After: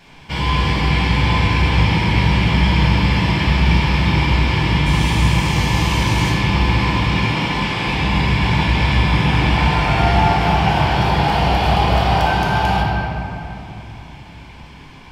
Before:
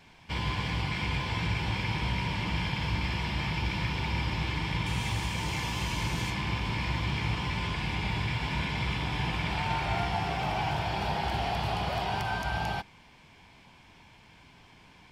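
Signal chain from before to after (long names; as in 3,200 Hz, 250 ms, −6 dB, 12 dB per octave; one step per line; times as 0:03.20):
0:06.73–0:07.85: high-pass filter 130 Hz → 330 Hz 12 dB per octave
0:10.83–0:12.17: surface crackle 390 per second −57 dBFS
rectangular room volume 140 cubic metres, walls hard, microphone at 0.74 metres
level +8 dB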